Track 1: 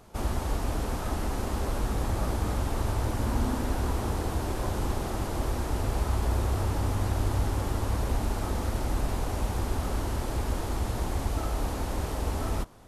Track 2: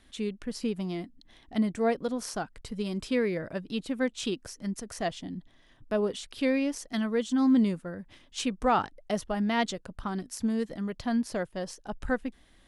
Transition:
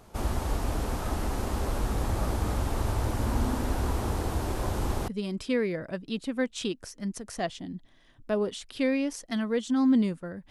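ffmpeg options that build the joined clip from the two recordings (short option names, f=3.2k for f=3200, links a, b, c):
-filter_complex "[0:a]apad=whole_dur=10.5,atrim=end=10.5,atrim=end=5.082[a];[1:a]atrim=start=2.698:end=8.12[b];[a][b]acrossfade=d=0.004:c1=hsin:c2=hsin"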